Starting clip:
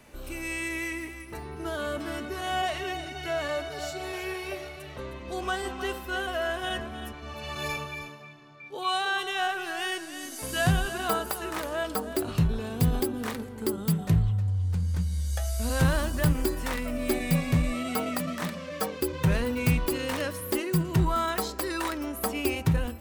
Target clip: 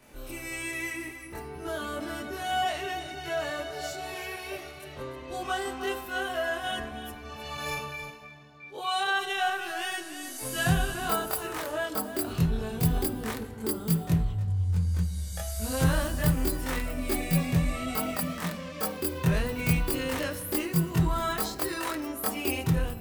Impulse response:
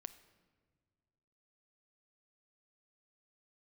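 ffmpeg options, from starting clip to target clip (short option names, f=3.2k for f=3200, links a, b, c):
-filter_complex "[0:a]asplit=2[a][b];[b]highshelf=f=10k:g=7[c];[1:a]atrim=start_sample=2205,adelay=23[d];[c][d]afir=irnorm=-1:irlink=0,volume=7.5dB[e];[a][e]amix=inputs=2:normalize=0,volume=-5.5dB"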